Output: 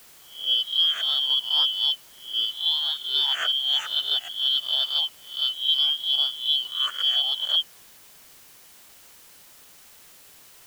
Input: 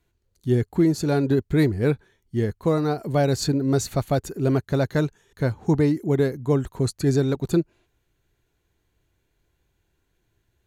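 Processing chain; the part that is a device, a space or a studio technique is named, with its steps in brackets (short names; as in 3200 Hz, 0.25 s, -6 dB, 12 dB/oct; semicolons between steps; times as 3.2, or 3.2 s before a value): spectral swells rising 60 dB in 0.43 s; split-band scrambled radio (four-band scrambler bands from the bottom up 3412; BPF 350–3000 Hz; white noise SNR 24 dB)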